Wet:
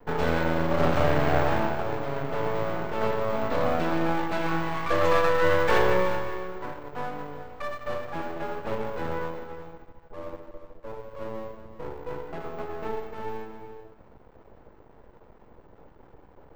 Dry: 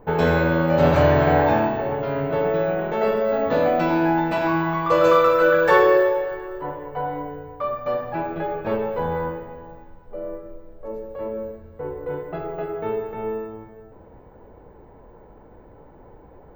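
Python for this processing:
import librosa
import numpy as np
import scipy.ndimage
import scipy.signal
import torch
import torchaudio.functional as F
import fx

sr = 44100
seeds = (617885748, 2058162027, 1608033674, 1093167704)

y = np.maximum(x, 0.0)
y = y + 10.0 ** (-12.0 / 20.0) * np.pad(y, (int(374 * sr / 1000.0), 0))[:len(y)]
y = F.gain(torch.from_numpy(y), -2.5).numpy()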